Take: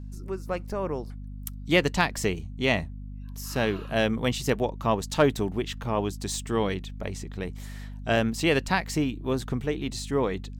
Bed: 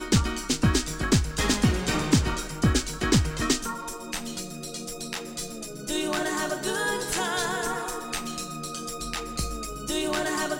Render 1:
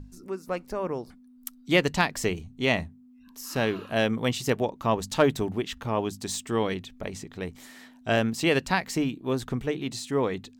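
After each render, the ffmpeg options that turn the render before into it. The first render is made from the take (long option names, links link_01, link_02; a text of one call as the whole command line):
ffmpeg -i in.wav -af "bandreject=frequency=50:width_type=h:width=6,bandreject=frequency=100:width_type=h:width=6,bandreject=frequency=150:width_type=h:width=6,bandreject=frequency=200:width_type=h:width=6" out.wav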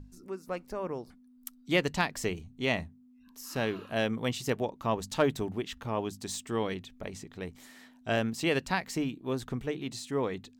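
ffmpeg -i in.wav -af "volume=-5dB" out.wav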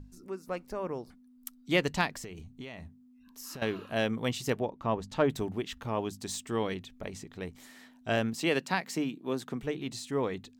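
ffmpeg -i in.wav -filter_complex "[0:a]asettb=1/sr,asplit=3[link_01][link_02][link_03];[link_01]atrim=end=2.154[link_04];[link_02]atrim=start=2.15:end=3.62,asetpts=PTS-STARTPTS,afade=type=in:duration=0.004:curve=qsin,afade=type=out:start_time=1.466:duration=0.004:curve=qsin,acompressor=threshold=-38dB:ratio=20:attack=3.2:release=140:knee=1:detection=peak[link_05];[link_03]atrim=start=3.616[link_06];[link_04][link_05]acrossfade=duration=0.004:curve1=hsin:curve2=qsin[link_07];[link_07][link_06]acrossfade=duration=0.004:curve1=qsin:curve2=hsin,asettb=1/sr,asplit=3[link_08][link_09][link_10];[link_08]atrim=end=4.594[link_11];[link_09]atrim=start=4.59:end=5.3,asetpts=PTS-STARTPTS,afade=type=in:duration=0.004:curve=qsin,afade=type=out:start_time=0.706:duration=0.004:curve=qsin,aemphasis=mode=reproduction:type=75kf[link_12];[link_10]atrim=start=5.296[link_13];[link_11][link_12]acrossfade=duration=0.004:curve1=hsin:curve2=qsin[link_14];[link_14][link_13]acrossfade=duration=0.004:curve1=qsin:curve2=hsin,asettb=1/sr,asplit=3[link_15][link_16][link_17];[link_15]atrim=end=8.364[link_18];[link_16]atrim=start=8.36:end=9.63,asetpts=PTS-STARTPTS,afade=type=in:duration=0.004:curve=qsin,afade=type=out:start_time=1.266:duration=0.004:curve=qsin,highpass=frequency=150:width=0.5412,highpass=frequency=150:width=1.3066[link_19];[link_17]atrim=start=9.626[link_20];[link_18][link_19]acrossfade=duration=0.004:curve1=hsin:curve2=qsin[link_21];[link_21][link_20]acrossfade=duration=0.004:curve1=qsin:curve2=hsin" out.wav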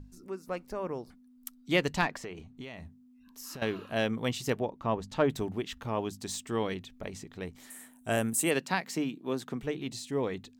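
ffmpeg -i in.wav -filter_complex "[0:a]asettb=1/sr,asplit=3[link_01][link_02][link_03];[link_01]atrim=end=2.024[link_04];[link_02]atrim=start=2.02:end=2.58,asetpts=PTS-STARTPTS,afade=type=in:duration=0.004:curve=qsin,afade=type=out:start_time=0.556:duration=0.004:curve=qsin,asplit=2[link_05][link_06];[link_06]highpass=frequency=720:poles=1,volume=15dB,asoftclip=type=tanh:threshold=-13.5dB[link_07];[link_05][link_07]amix=inputs=2:normalize=0,lowpass=frequency=1300:poles=1,volume=-6dB[link_08];[link_03]atrim=start=2.576[link_09];[link_04][link_08]acrossfade=duration=0.004:curve1=hsin:curve2=qsin[link_10];[link_10][link_09]acrossfade=duration=0.004:curve1=qsin:curve2=hsin,asettb=1/sr,asplit=3[link_11][link_12][link_13];[link_11]atrim=end=7.704[link_14];[link_12]atrim=start=7.7:end=8.51,asetpts=PTS-STARTPTS,afade=type=in:duration=0.004:curve=qsin,afade=type=out:start_time=0.806:duration=0.004:curve=qsin,highshelf=frequency=6700:width_type=q:width=3:gain=13[link_15];[link_13]atrim=start=8.506[link_16];[link_14][link_15]acrossfade=duration=0.004:curve1=hsin:curve2=qsin[link_17];[link_17][link_16]acrossfade=duration=0.004:curve1=qsin:curve2=hsin,asettb=1/sr,asplit=3[link_18][link_19][link_20];[link_18]atrim=end=9.874[link_21];[link_19]atrim=start=9.87:end=10.27,asetpts=PTS-STARTPTS,afade=type=in:duration=0.004:curve=qsin,afade=type=out:start_time=0.396:duration=0.004:curve=qsin,equalizer=frequency=1300:width_type=o:width=0.77:gain=-6.5[link_22];[link_20]atrim=start=10.266[link_23];[link_21][link_22]acrossfade=duration=0.004:curve1=hsin:curve2=qsin[link_24];[link_24][link_23]acrossfade=duration=0.004:curve1=qsin:curve2=hsin" out.wav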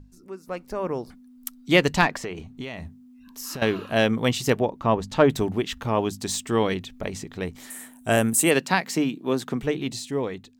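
ffmpeg -i in.wav -af "dynaudnorm=framelen=200:gausssize=7:maxgain=9dB" out.wav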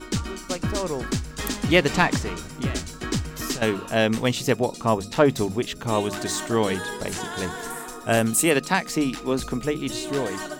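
ffmpeg -i in.wav -i bed.wav -filter_complex "[1:a]volume=-5dB[link_01];[0:a][link_01]amix=inputs=2:normalize=0" out.wav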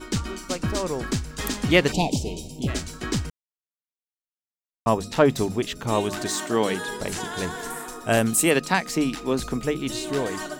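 ffmpeg -i in.wav -filter_complex "[0:a]asplit=3[link_01][link_02][link_03];[link_01]afade=type=out:start_time=1.91:duration=0.02[link_04];[link_02]asuperstop=centerf=1500:order=8:qfactor=0.81,afade=type=in:start_time=1.91:duration=0.02,afade=type=out:start_time=2.67:duration=0.02[link_05];[link_03]afade=type=in:start_time=2.67:duration=0.02[link_06];[link_04][link_05][link_06]amix=inputs=3:normalize=0,asettb=1/sr,asplit=3[link_07][link_08][link_09];[link_07]atrim=end=6.284[link_10];[link_08]atrim=start=6.28:end=6.88,asetpts=PTS-STARTPTS,afade=type=in:duration=0.004:curve=qsin,afade=type=out:start_time=0.596:duration=0.004:curve=qsin,highpass=160[link_11];[link_09]atrim=start=6.876[link_12];[link_10][link_11]acrossfade=duration=0.004:curve1=hsin:curve2=qsin[link_13];[link_13][link_12]acrossfade=duration=0.004:curve1=qsin:curve2=hsin,asplit=3[link_14][link_15][link_16];[link_14]atrim=end=3.3,asetpts=PTS-STARTPTS,afade=type=out:start_time=3.296:duration=0.004:curve=hsin[link_17];[link_15]atrim=start=3.3:end=4.86,asetpts=PTS-STARTPTS,volume=0[link_18];[link_16]atrim=start=4.86,asetpts=PTS-STARTPTS,afade=type=in:duration=0.004:curve=hsin[link_19];[link_17][link_18][link_19]concat=n=3:v=0:a=1" out.wav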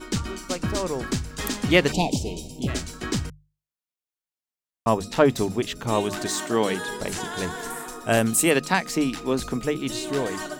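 ffmpeg -i in.wav -af "bandreject=frequency=50:width_type=h:width=6,bandreject=frequency=100:width_type=h:width=6,bandreject=frequency=150:width_type=h:width=6" out.wav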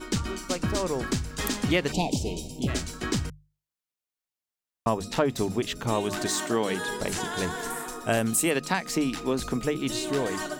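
ffmpeg -i in.wav -af "acompressor=threshold=-22dB:ratio=3" out.wav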